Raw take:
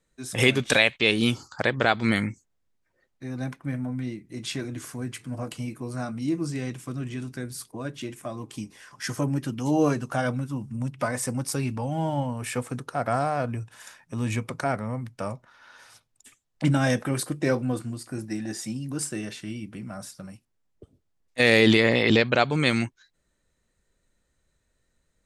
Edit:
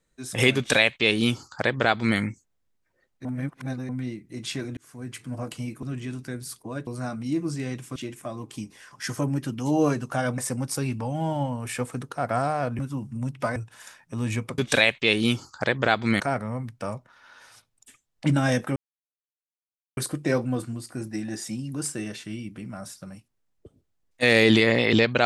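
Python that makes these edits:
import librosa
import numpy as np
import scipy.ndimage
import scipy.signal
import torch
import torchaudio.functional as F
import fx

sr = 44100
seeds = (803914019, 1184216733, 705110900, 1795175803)

y = fx.edit(x, sr, fx.duplicate(start_s=0.56, length_s=1.62, to_s=14.58),
    fx.reverse_span(start_s=3.25, length_s=0.64),
    fx.fade_in_span(start_s=4.77, length_s=0.43),
    fx.move(start_s=6.92, length_s=1.04, to_s=5.83),
    fx.move(start_s=10.38, length_s=0.77, to_s=13.56),
    fx.insert_silence(at_s=17.14, length_s=1.21), tone=tone)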